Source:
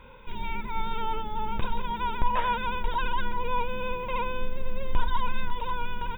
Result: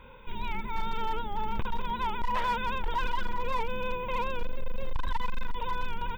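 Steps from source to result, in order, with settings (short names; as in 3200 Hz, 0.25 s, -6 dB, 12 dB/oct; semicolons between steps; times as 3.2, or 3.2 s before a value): hard clip -22 dBFS, distortion -11 dB; record warp 78 rpm, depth 100 cents; gain -1 dB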